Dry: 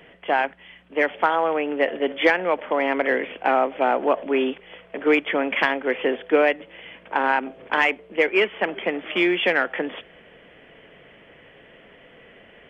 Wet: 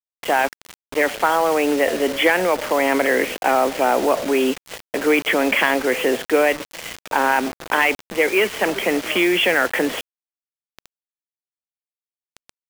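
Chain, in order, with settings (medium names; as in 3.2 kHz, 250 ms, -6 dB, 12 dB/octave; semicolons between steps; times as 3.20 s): in parallel at -1 dB: compressor with a negative ratio -26 dBFS, ratio -1; on the sum: bit crusher 5-bit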